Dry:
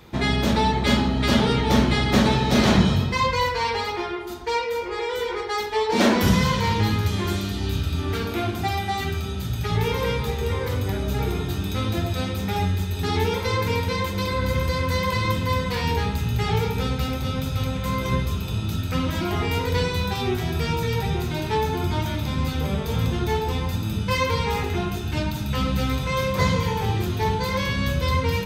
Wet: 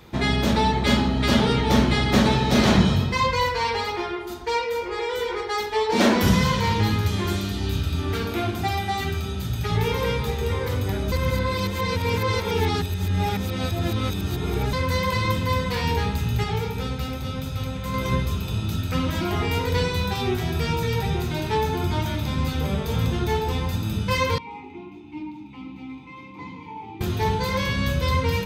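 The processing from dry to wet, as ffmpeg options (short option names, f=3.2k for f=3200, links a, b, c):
-filter_complex "[0:a]asettb=1/sr,asplit=3[a][b][c];[a]atrim=end=24.384[d];[b]atrim=start=24.38:end=27.01,asetpts=PTS-STARTPTS,afade=t=in:d=0.004:c=qsin,afade=t=out:st=2.626:d=0.004:c=qsin,asplit=3[e][f][g];[e]bandpass=f=300:t=q:w=8,volume=0dB[h];[f]bandpass=f=870:t=q:w=8,volume=-6dB[i];[g]bandpass=f=2.24k:t=q:w=8,volume=-9dB[j];[h][i][j]amix=inputs=3:normalize=0[k];[c]atrim=start=27.006[l];[d][k]acrossfade=d=0.004:c1=hsin:c2=qsin[m];[m][l]acrossfade=d=0.004:c1=qsin:c2=hsin,asplit=5[n][o][p][q][r];[n]atrim=end=11.122[s];[o]atrim=start=11.118:end=14.732,asetpts=PTS-STARTPTS,areverse[t];[p]atrim=start=14.728:end=16.442[u];[q]atrim=start=16.438:end=17.942,asetpts=PTS-STARTPTS,volume=-3.5dB[v];[r]atrim=start=17.938[w];[s][t]acrossfade=d=0.004:c1=hsin:c2=hsin[x];[x][u]acrossfade=d=0.004:c1=hsin:c2=hsin[y];[y][v]acrossfade=d=0.004:c1=hsin:c2=hsin[z];[z][w]acrossfade=d=0.004:c1=hsin:c2=hsin"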